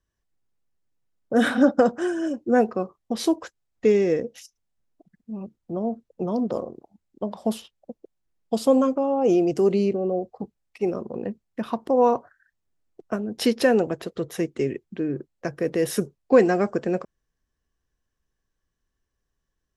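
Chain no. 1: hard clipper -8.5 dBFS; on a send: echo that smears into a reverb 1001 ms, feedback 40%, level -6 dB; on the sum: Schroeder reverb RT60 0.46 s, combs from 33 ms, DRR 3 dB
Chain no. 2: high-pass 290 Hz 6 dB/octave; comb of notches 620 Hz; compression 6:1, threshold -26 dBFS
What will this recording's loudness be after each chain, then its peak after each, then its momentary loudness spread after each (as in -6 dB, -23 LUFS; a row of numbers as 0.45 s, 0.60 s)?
-22.0 LUFS, -33.0 LUFS; -3.0 dBFS, -15.5 dBFS; 15 LU, 12 LU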